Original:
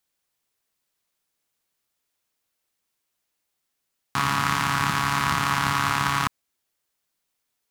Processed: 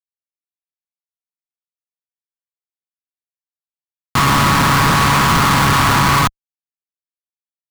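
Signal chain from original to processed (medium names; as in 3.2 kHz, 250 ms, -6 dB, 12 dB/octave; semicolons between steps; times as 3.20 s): distance through air 220 m; fuzz box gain 35 dB, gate -40 dBFS; waveshaping leveller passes 5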